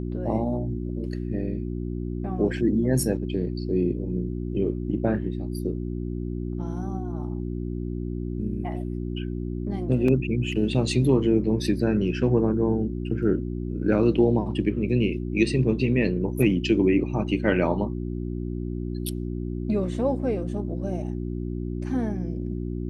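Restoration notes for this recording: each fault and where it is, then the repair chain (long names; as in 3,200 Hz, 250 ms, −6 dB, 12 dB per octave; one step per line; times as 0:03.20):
mains hum 60 Hz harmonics 6 −30 dBFS
0:10.08: drop-out 3.6 ms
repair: hum removal 60 Hz, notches 6
repair the gap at 0:10.08, 3.6 ms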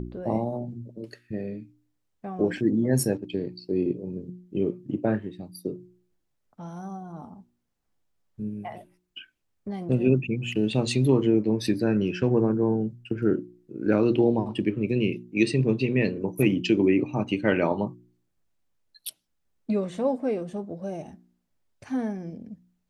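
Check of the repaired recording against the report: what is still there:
none of them is left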